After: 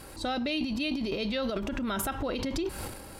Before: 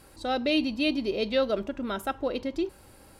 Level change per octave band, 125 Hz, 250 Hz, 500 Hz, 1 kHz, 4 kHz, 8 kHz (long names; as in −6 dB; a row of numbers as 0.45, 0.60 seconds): +5.5 dB, −2.0 dB, −5.5 dB, −2.0 dB, −2.0 dB, can't be measured